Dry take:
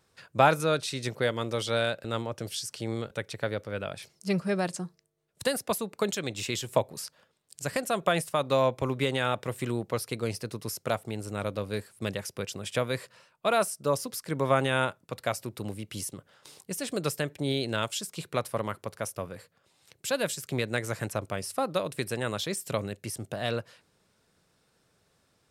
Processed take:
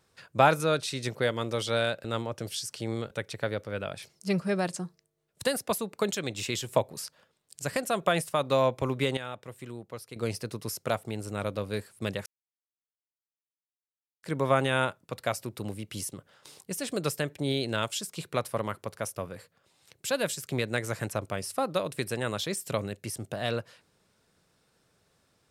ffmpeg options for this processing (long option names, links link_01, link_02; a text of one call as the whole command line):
ffmpeg -i in.wav -filter_complex "[0:a]asplit=5[link_01][link_02][link_03][link_04][link_05];[link_01]atrim=end=9.172[link_06];[link_02]atrim=start=9.168:end=10.162,asetpts=PTS-STARTPTS,volume=-10.5dB[link_07];[link_03]atrim=start=10.158:end=12.26,asetpts=PTS-STARTPTS,afade=type=out:start_time=2.098:duration=0.004:curve=hsin[link_08];[link_04]atrim=start=12.26:end=14.23,asetpts=PTS-STARTPTS,volume=0[link_09];[link_05]atrim=start=14.23,asetpts=PTS-STARTPTS,afade=type=in:duration=0.004:curve=hsin[link_10];[link_06][link_07]acrossfade=duration=0.004:curve1=hsin:curve2=hsin[link_11];[link_08][link_09][link_10]concat=n=3:v=0:a=1[link_12];[link_11][link_12]acrossfade=duration=0.004:curve1=hsin:curve2=hsin" out.wav